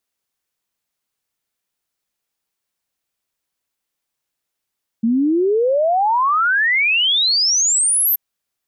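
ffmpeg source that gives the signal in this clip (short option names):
-f lavfi -i "aevalsrc='0.224*clip(min(t,3.13-t)/0.01,0,1)*sin(2*PI*220*3.13/log(13000/220)*(exp(log(13000/220)*t/3.13)-1))':d=3.13:s=44100"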